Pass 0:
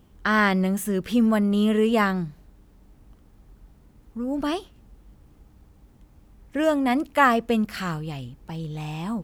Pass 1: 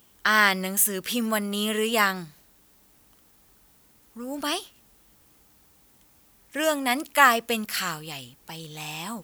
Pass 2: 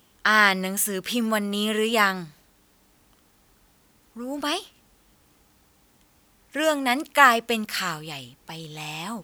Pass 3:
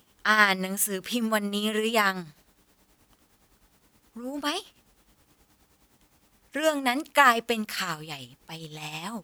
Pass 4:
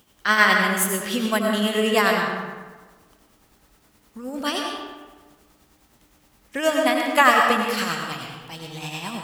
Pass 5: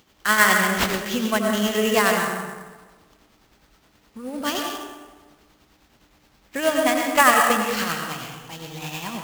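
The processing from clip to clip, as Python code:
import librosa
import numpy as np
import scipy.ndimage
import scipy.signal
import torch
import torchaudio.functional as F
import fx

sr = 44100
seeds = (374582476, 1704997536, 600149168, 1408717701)

y1 = fx.tilt_eq(x, sr, slope=4.0)
y2 = fx.high_shelf(y1, sr, hz=9200.0, db=-9.5)
y2 = y2 * 10.0 ** (2.0 / 20.0)
y3 = y2 * (1.0 - 0.58 / 2.0 + 0.58 / 2.0 * np.cos(2.0 * np.pi * 9.6 * (np.arange(len(y2)) / sr)))
y4 = fx.rev_freeverb(y3, sr, rt60_s=1.4, hf_ratio=0.6, predelay_ms=60, drr_db=1.0)
y4 = y4 * 10.0 ** (2.5 / 20.0)
y5 = fx.sample_hold(y4, sr, seeds[0], rate_hz=9800.0, jitter_pct=20)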